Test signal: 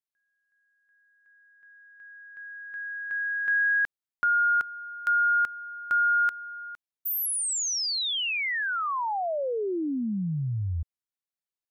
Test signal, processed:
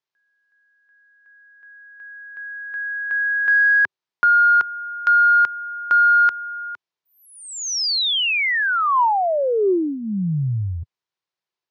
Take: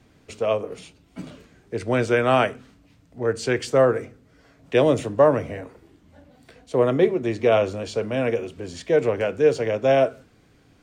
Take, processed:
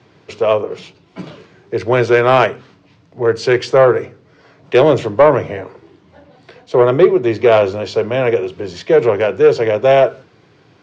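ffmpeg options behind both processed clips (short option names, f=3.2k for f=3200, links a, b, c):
-af "highpass=f=100:w=0.5412,highpass=f=100:w=1.3066,equalizer=f=250:t=q:w=4:g=-10,equalizer=f=380:t=q:w=4:g=5,equalizer=f=980:t=q:w=4:g=5,lowpass=f=5.6k:w=0.5412,lowpass=f=5.6k:w=1.3066,aeval=exprs='0.668*(cos(1*acos(clip(val(0)/0.668,-1,1)))-cos(1*PI/2))+0.00841*(cos(2*acos(clip(val(0)/0.668,-1,1)))-cos(2*PI/2))':c=same,asoftclip=type=tanh:threshold=-9.5dB,volume=8.5dB"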